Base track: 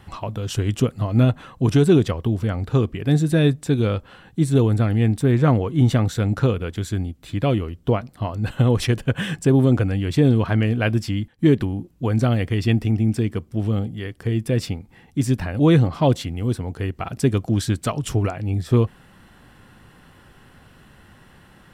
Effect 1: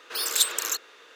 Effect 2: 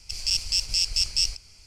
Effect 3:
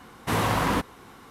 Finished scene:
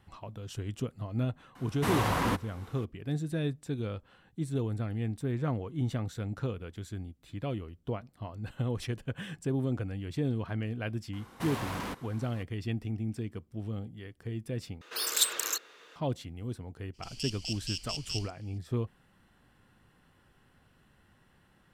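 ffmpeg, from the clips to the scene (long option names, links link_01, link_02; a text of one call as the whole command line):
ffmpeg -i bed.wav -i cue0.wav -i cue1.wav -i cue2.wav -filter_complex "[3:a]asplit=2[link_01][link_02];[0:a]volume=-15dB[link_03];[link_02]asoftclip=type=tanh:threshold=-29dB[link_04];[1:a]equalizer=frequency=150:width=1.5:gain=8[link_05];[2:a]equalizer=frequency=3000:width=4.2:gain=14.5[link_06];[link_03]asplit=2[link_07][link_08];[link_07]atrim=end=14.814[link_09];[link_05]atrim=end=1.15,asetpts=PTS-STARTPTS,volume=-4dB[link_10];[link_08]atrim=start=15.956[link_11];[link_01]atrim=end=1.3,asetpts=PTS-STARTPTS,volume=-5dB,afade=type=in:duration=0.004:curve=hsin,afade=type=out:start_time=1.296:duration=0.004:curve=hsin,adelay=1550[link_12];[link_04]atrim=end=1.3,asetpts=PTS-STARTPTS,volume=-5.5dB,afade=type=in:duration=0.004:curve=hsin,afade=type=out:start_time=1.296:duration=0.004:curve=hsin,adelay=11130[link_13];[link_06]atrim=end=1.66,asetpts=PTS-STARTPTS,volume=-15.5dB,afade=type=in:duration=0.02,afade=type=out:start_time=1.64:duration=0.02,adelay=16930[link_14];[link_09][link_10]acrossfade=duration=0.004:curve1=hsin:curve2=hsin[link_15];[link_15][link_11]acrossfade=duration=0.004:curve1=hsin:curve2=hsin[link_16];[link_16][link_12][link_13][link_14]amix=inputs=4:normalize=0" out.wav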